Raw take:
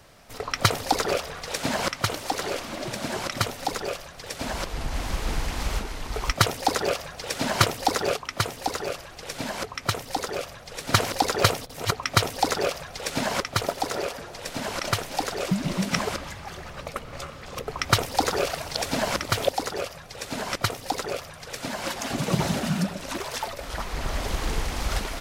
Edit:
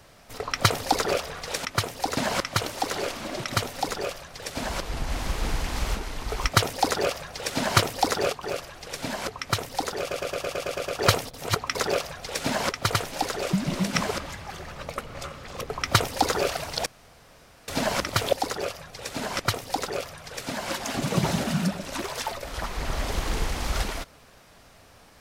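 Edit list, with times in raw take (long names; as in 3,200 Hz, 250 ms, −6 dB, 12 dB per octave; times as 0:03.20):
0:02.92–0:03.28: remove
0:08.27–0:08.79: move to 0:01.65
0:10.36: stutter in place 0.11 s, 9 plays
0:12.11–0:12.46: remove
0:13.65–0:14.92: remove
0:18.84: splice in room tone 0.82 s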